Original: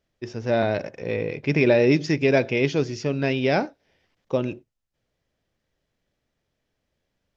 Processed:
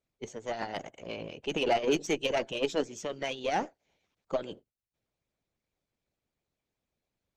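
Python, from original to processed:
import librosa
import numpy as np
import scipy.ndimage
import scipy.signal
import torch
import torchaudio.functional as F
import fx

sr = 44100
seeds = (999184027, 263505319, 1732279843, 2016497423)

y = fx.formant_shift(x, sr, semitones=3)
y = fx.hpss(y, sr, part='harmonic', gain_db=-17)
y = fx.cheby_harmonics(y, sr, harmonics=(8,), levels_db=(-27,), full_scale_db=-9.5)
y = F.gain(torch.from_numpy(y), -4.5).numpy()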